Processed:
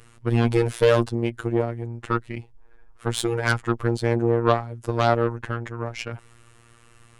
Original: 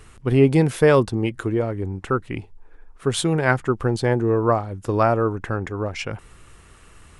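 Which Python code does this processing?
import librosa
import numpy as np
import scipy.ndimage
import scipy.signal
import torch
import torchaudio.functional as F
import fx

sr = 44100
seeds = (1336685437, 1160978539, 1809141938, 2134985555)

y = fx.cheby_harmonics(x, sr, harmonics=(5, 6, 7), levels_db=(-9, -18, -13), full_scale_db=-3.5)
y = fx.robotise(y, sr, hz=117.0)
y = y * librosa.db_to_amplitude(-3.5)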